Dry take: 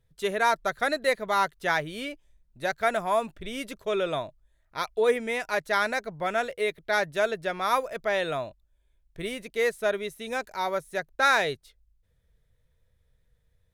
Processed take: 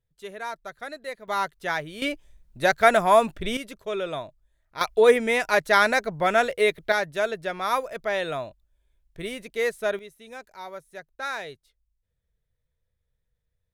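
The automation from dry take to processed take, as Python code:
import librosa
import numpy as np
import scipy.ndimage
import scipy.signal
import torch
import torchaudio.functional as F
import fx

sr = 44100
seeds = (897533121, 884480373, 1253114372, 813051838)

y = fx.gain(x, sr, db=fx.steps((0.0, -10.5), (1.28, -2.0), (2.02, 8.0), (3.57, -2.0), (4.81, 6.5), (6.92, 0.0), (9.99, -10.0)))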